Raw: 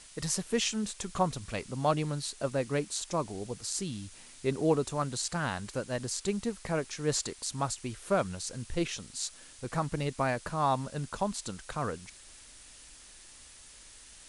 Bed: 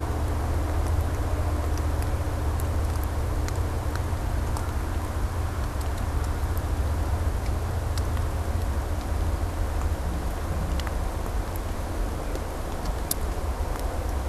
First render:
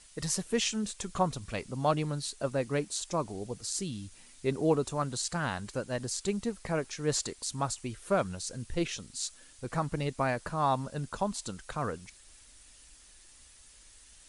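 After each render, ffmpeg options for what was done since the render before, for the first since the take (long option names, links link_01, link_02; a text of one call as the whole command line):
ffmpeg -i in.wav -af "afftdn=noise_reduction=6:noise_floor=-53" out.wav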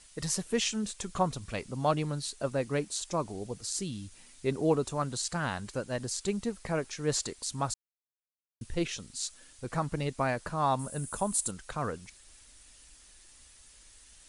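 ffmpeg -i in.wav -filter_complex "[0:a]asettb=1/sr,asplit=3[link_01][link_02][link_03];[link_01]atrim=end=10.794[link_04];[link_02]atrim=start=10.79:end=11.51,asetpts=PTS-STARTPTS,afade=type=in:duration=0.004:curve=qsin,afade=type=out:start_time=0.716:duration=0.004:curve=qsin,highshelf=frequency=7000:width_type=q:width=1.5:gain=13.5[link_05];[link_03]atrim=start=11.506[link_06];[link_04][link_05]acrossfade=duration=0.004:curve1=hsin:curve2=qsin[link_07];[link_07][link_06]acrossfade=duration=0.004:curve1=qsin:curve2=hsin,asplit=3[link_08][link_09][link_10];[link_08]atrim=end=7.74,asetpts=PTS-STARTPTS,afade=type=out:start_time=7.736:duration=0.004:curve=hsin[link_11];[link_09]atrim=start=7.74:end=8.61,asetpts=PTS-STARTPTS,volume=0[link_12];[link_10]atrim=start=8.61,asetpts=PTS-STARTPTS,afade=type=in:duration=0.004:curve=hsin[link_13];[link_11][link_12][link_13]concat=n=3:v=0:a=1" out.wav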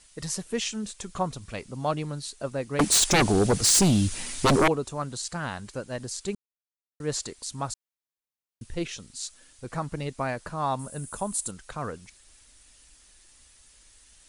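ffmpeg -i in.wav -filter_complex "[0:a]asettb=1/sr,asplit=3[link_01][link_02][link_03];[link_01]atrim=end=2.794[link_04];[link_02]atrim=start=2.79:end=4.68,asetpts=PTS-STARTPTS,afade=type=in:duration=0.004:curve=qsin,afade=type=out:start_time=1.886:duration=0.004:curve=qsin,aeval=exprs='0.168*sin(PI/2*6.31*val(0)/0.168)':channel_layout=same[link_05];[link_03]atrim=start=4.676[link_06];[link_04][link_05]acrossfade=duration=0.004:curve1=hsin:curve2=qsin[link_07];[link_07][link_06]acrossfade=duration=0.004:curve1=qsin:curve2=hsin,asplit=3[link_08][link_09][link_10];[link_08]atrim=end=6.35,asetpts=PTS-STARTPTS,afade=type=out:start_time=6.346:duration=0.004:curve=hsin[link_11];[link_09]atrim=start=6.35:end=7,asetpts=PTS-STARTPTS,volume=0[link_12];[link_10]atrim=start=7,asetpts=PTS-STARTPTS,afade=type=in:duration=0.004:curve=hsin[link_13];[link_11][link_12][link_13]concat=n=3:v=0:a=1" out.wav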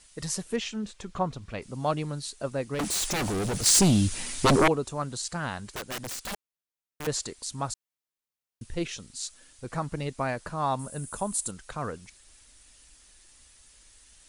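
ffmpeg -i in.wav -filter_complex "[0:a]asettb=1/sr,asplit=3[link_01][link_02][link_03];[link_01]atrim=end=0.564[link_04];[link_02]atrim=start=0.56:end=1.62,asetpts=PTS-STARTPTS,afade=type=in:duration=0.004:curve=qsin,afade=type=out:start_time=1.056:duration=0.004:curve=qsin,equalizer=frequency=10000:width=0.6:gain=-13.5[link_05];[link_03]atrim=start=1.616[link_06];[link_04][link_05]acrossfade=duration=0.004:curve1=hsin:curve2=qsin[link_07];[link_07][link_06]acrossfade=duration=0.004:curve1=qsin:curve2=hsin,asettb=1/sr,asplit=3[link_08][link_09][link_10];[link_08]atrim=end=2.744[link_11];[link_09]atrim=start=2.74:end=3.66,asetpts=PTS-STARTPTS,afade=type=in:duration=0.004:curve=qsin,afade=type=out:start_time=0.916:duration=0.004:curve=qsin,volume=27dB,asoftclip=hard,volume=-27dB[link_12];[link_10]atrim=start=3.656[link_13];[link_11][link_12]acrossfade=duration=0.004:curve1=hsin:curve2=qsin[link_14];[link_14][link_13]acrossfade=duration=0.004:curve1=qsin:curve2=hsin,asettb=1/sr,asplit=3[link_15][link_16][link_17];[link_15]atrim=end=5.664[link_18];[link_16]atrim=start=5.66:end=7.07,asetpts=PTS-STARTPTS,afade=type=in:duration=0.004:curve=qsin,afade=type=out:start_time=1.406:duration=0.004:curve=qsin,aeval=exprs='(mod(29.9*val(0)+1,2)-1)/29.9':channel_layout=same[link_19];[link_17]atrim=start=7.066[link_20];[link_18][link_19]acrossfade=duration=0.004:curve1=hsin:curve2=qsin[link_21];[link_21][link_20]acrossfade=duration=0.004:curve1=qsin:curve2=hsin" out.wav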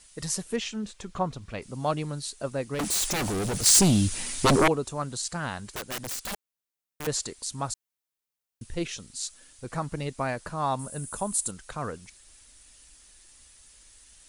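ffmpeg -i in.wav -af "highshelf=frequency=8000:gain=4.5" out.wav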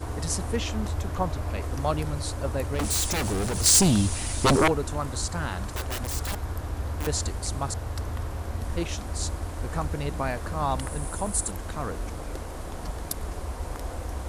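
ffmpeg -i in.wav -i bed.wav -filter_complex "[1:a]volume=-5dB[link_01];[0:a][link_01]amix=inputs=2:normalize=0" out.wav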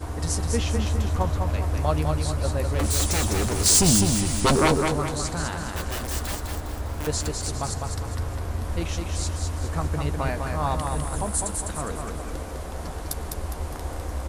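ffmpeg -i in.wav -filter_complex "[0:a]asplit=2[link_01][link_02];[link_02]adelay=13,volume=-11dB[link_03];[link_01][link_03]amix=inputs=2:normalize=0,aecho=1:1:204|408|612|816|1020:0.596|0.262|0.115|0.0507|0.0223" out.wav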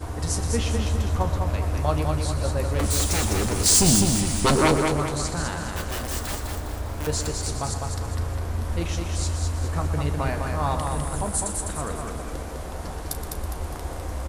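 ffmpeg -i in.wav -filter_complex "[0:a]asplit=2[link_01][link_02];[link_02]adelay=35,volume=-13dB[link_03];[link_01][link_03]amix=inputs=2:normalize=0,aecho=1:1:121:0.237" out.wav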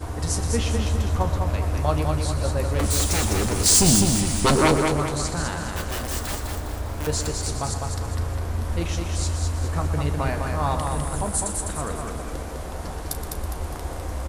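ffmpeg -i in.wav -af "volume=1dB" out.wav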